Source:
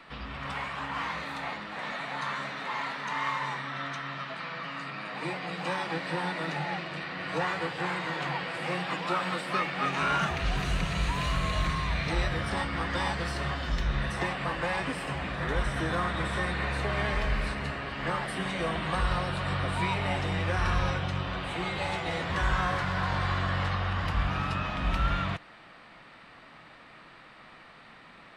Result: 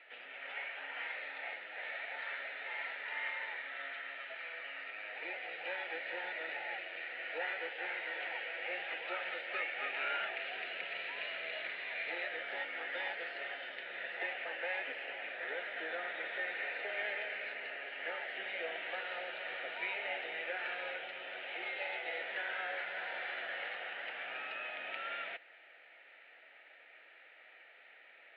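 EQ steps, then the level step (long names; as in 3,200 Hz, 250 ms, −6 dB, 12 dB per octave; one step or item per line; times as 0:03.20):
high-pass filter 500 Hz 24 dB per octave
transistor ladder low-pass 3,300 Hz, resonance 20%
phaser with its sweep stopped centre 2,600 Hz, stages 4
+2.0 dB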